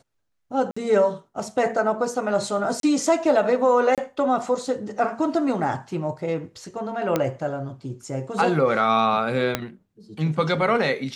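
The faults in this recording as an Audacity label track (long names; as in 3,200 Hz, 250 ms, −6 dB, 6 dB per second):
0.710000	0.770000	drop-out 55 ms
2.800000	2.830000	drop-out 32 ms
3.950000	3.980000	drop-out 27 ms
7.160000	7.160000	click −8 dBFS
9.550000	9.550000	click −6 dBFS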